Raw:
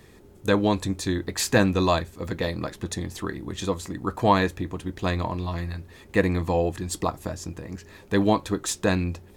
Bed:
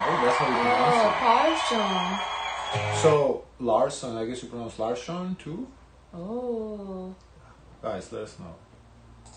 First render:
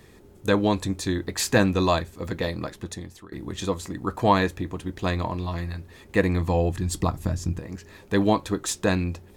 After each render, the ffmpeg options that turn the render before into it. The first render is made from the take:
-filter_complex "[0:a]asettb=1/sr,asplit=3[a][b][c];[a]atrim=end=6.224[d];[b]atrim=start=6.22:end=7.59,asetpts=PTS-STARTPTS,afade=t=in:d=0.004:c=qsin,afade=t=out:st=1.366:d=0.004:c=qsin,asubboost=boost=7.5:cutoff=250[e];[c]atrim=start=7.586[f];[d][e]acrossfade=d=0.004:c1=hsin:c2=qsin[g];[g][f]acrossfade=d=0.004:c1=qsin:c2=hsin,asplit=2[h][i];[h]atrim=end=3.32,asetpts=PTS-STARTPTS,afade=t=out:st=2.29:d=1.03:c=qsin:silence=0.0841395[j];[i]atrim=start=3.32,asetpts=PTS-STARTPTS,afade=t=in:d=0.004:c=hsin:silence=0.0841395[k];[j][k]concat=n=2:v=0:a=1"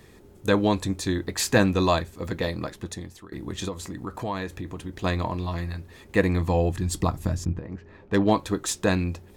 -filter_complex "[0:a]asettb=1/sr,asplit=3[a][b][c];[a]atrim=end=3.684[d];[b]atrim=start=3.68:end=5.04,asetpts=PTS-STARTPTS,afade=t=in:d=0.004:c=qsin,afade=t=out:st=1.356:d=0.004:c=qsin,acompressor=threshold=-31dB:ratio=2.5:attack=3.2:release=140:knee=1:detection=peak[e];[c]atrim=start=5.036[f];[d][e]acrossfade=d=0.004:c1=hsin:c2=qsin[g];[g][f]acrossfade=d=0.004:c1=qsin:c2=hsin,asettb=1/sr,asplit=3[h][i][j];[h]atrim=end=7.454[k];[i]atrim=start=7.45:end=8.31,asetpts=PTS-STARTPTS,afade=t=in:d=0.004:c=qsin,afade=t=out:st=0.856:d=0.004:c=qsin,adynamicsmooth=sensitivity=2:basefreq=2k[l];[j]atrim=start=8.306[m];[k][l]acrossfade=d=0.004:c1=hsin:c2=qsin[n];[n][m]acrossfade=d=0.004:c1=qsin:c2=hsin"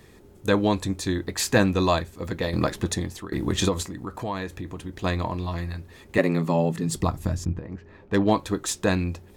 -filter_complex "[0:a]asettb=1/sr,asplit=3[a][b][c];[a]atrim=end=6.184[d];[b]atrim=start=6.18:end=6.96,asetpts=PTS-STARTPTS,afade=t=in:d=0.004:c=qsin,afade=t=out:st=0.776:d=0.004:c=qsin,afreqshift=77[e];[c]atrim=start=6.956[f];[d][e]acrossfade=d=0.004:c1=hsin:c2=qsin[g];[g][f]acrossfade=d=0.004:c1=qsin:c2=hsin,asplit=3[h][i][j];[h]atrim=end=2.532[k];[i]atrim=start=2.528:end=3.832,asetpts=PTS-STARTPTS,volume=8.5dB[l];[j]atrim=start=3.828[m];[k][l]acrossfade=d=0.004:c1=hsin:c2=hsin[n];[n][m]acrossfade=d=0.004:c1=hsin:c2=hsin"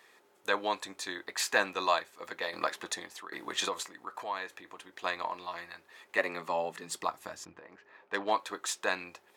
-af "highpass=890,highshelf=f=3.7k:g=-8.5"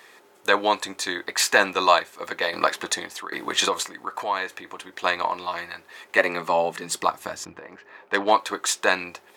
-af "volume=10.5dB,alimiter=limit=-3dB:level=0:latency=1"

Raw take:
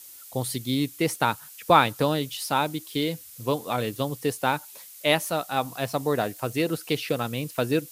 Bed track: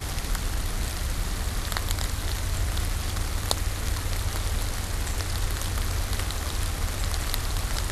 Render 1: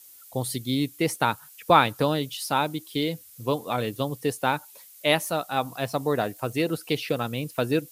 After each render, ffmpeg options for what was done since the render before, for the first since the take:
-af "afftdn=nr=6:nf=-46"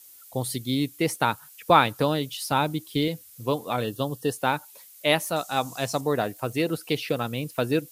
-filter_complex "[0:a]asettb=1/sr,asplit=3[a][b][c];[a]atrim=end=2.514[d];[b]atrim=start=2.51:end=3.08,asetpts=PTS-STARTPTS,afade=t=in:d=0.004:c=qsin,afade=t=out:st=0.566:d=0.004:c=qsin,lowshelf=f=140:g=10.5[e];[c]atrim=start=3.076[f];[d][e]acrossfade=d=0.004:c1=hsin:c2=qsin[g];[g][f]acrossfade=d=0.004:c1=qsin:c2=hsin,asettb=1/sr,asplit=3[h][i][j];[h]atrim=end=3.844[k];[i]atrim=start=3.84:end=4.33,asetpts=PTS-STARTPTS,afade=t=in:d=0.004:c=qsin,afade=t=out:st=0.486:d=0.004:c=qsin,asuperstop=centerf=2200:order=12:qfactor=3[l];[j]atrim=start=4.326[m];[k][l]acrossfade=d=0.004:c1=hsin:c2=qsin[n];[n][m]acrossfade=d=0.004:c1=qsin:c2=hsin,asettb=1/sr,asplit=3[o][p][q];[o]atrim=end=5.364[r];[p]atrim=start=5.36:end=6.01,asetpts=PTS-STARTPTS,afade=t=in:d=0.004:c=qsin,afade=t=out:st=0.646:d=0.004:c=qsin,equalizer=f=6.8k:t=o:w=0.99:g=12[s];[q]atrim=start=6.006[t];[r][s]acrossfade=d=0.004:c1=hsin:c2=qsin[u];[u][t]acrossfade=d=0.004:c1=qsin:c2=hsin"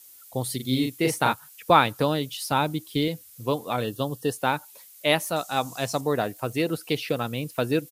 -filter_complex "[0:a]asplit=3[a][b][c];[a]afade=t=out:st=0.59:d=0.02[d];[b]asplit=2[e][f];[f]adelay=39,volume=-4dB[g];[e][g]amix=inputs=2:normalize=0,afade=t=in:st=0.59:d=0.02,afade=t=out:st=1.32:d=0.02[h];[c]afade=t=in:st=1.32:d=0.02[i];[d][h][i]amix=inputs=3:normalize=0"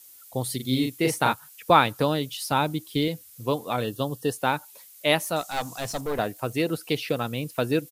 -filter_complex "[0:a]asettb=1/sr,asplit=3[a][b][c];[a]atrim=end=5.414[d];[b]atrim=start=5.41:end=6.19,asetpts=PTS-STARTPTS,afade=t=in:d=0.004:c=qsin,afade=t=out:st=0.776:d=0.004:c=qsin,aeval=exprs='clip(val(0),-1,0.0316)':c=same[e];[c]atrim=start=6.186[f];[d][e]acrossfade=d=0.004:c1=hsin:c2=qsin[g];[g][f]acrossfade=d=0.004:c1=qsin:c2=hsin"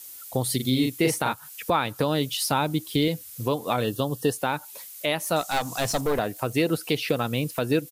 -filter_complex "[0:a]asplit=2[a][b];[b]acompressor=threshold=-31dB:ratio=6,volume=2.5dB[c];[a][c]amix=inputs=2:normalize=0,alimiter=limit=-11.5dB:level=0:latency=1:release=176"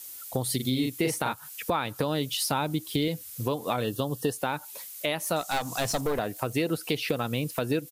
-af "acompressor=threshold=-26dB:ratio=2"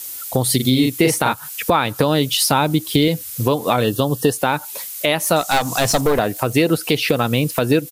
-af "volume=11.5dB,alimiter=limit=-3dB:level=0:latency=1"

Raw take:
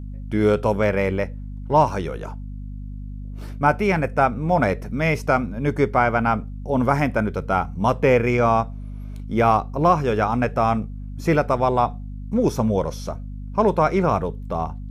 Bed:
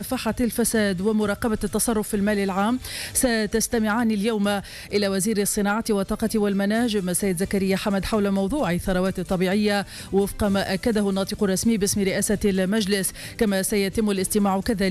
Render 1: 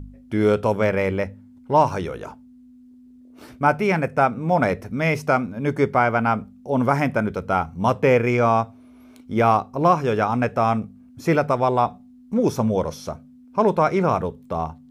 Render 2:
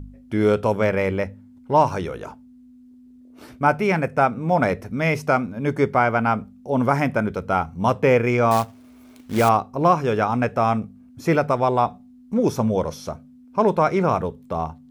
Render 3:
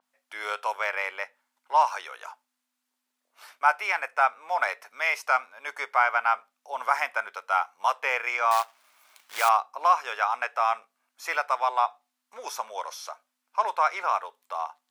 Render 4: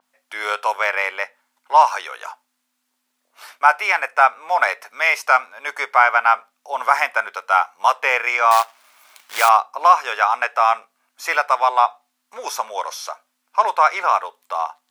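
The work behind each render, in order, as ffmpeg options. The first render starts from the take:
-af "bandreject=f=50:t=h:w=4,bandreject=f=100:t=h:w=4,bandreject=f=150:t=h:w=4,bandreject=f=200:t=h:w=4"
-filter_complex "[0:a]asettb=1/sr,asplit=3[a][b][c];[a]atrim=end=8.514[d];[b]atrim=start=8.51:end=9.49,asetpts=PTS-STARTPTS,afade=t=in:d=0.004:c=qsin,afade=t=out:st=0.976:d=0.004:c=qsin,acrusher=bits=3:mode=log:mix=0:aa=0.000001[e];[c]atrim=start=9.486[f];[d][e]acrossfade=d=0.004:c1=hsin:c2=qsin[g];[g][f]acrossfade=d=0.004:c1=qsin:c2=hsin"
-af "highpass=f=860:w=0.5412,highpass=f=860:w=1.3066,adynamicequalizer=threshold=0.00708:dfrequency=5000:dqfactor=0.7:tfrequency=5000:tqfactor=0.7:attack=5:release=100:ratio=0.375:range=2:mode=cutabove:tftype=highshelf"
-af "volume=8.5dB,alimiter=limit=-1dB:level=0:latency=1"

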